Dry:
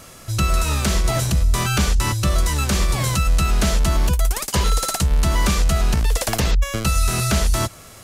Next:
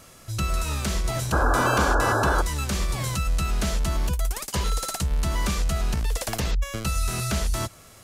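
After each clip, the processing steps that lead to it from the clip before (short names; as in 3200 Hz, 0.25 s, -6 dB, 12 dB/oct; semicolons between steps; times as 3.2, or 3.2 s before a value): painted sound noise, 1.32–2.42, 230–1700 Hz -16 dBFS; gain -7 dB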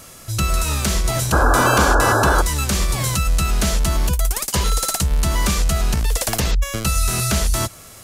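high shelf 6100 Hz +6 dB; gain +6 dB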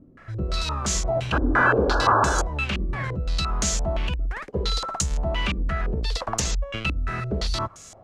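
stepped low-pass 5.8 Hz 290–6800 Hz; gain -7.5 dB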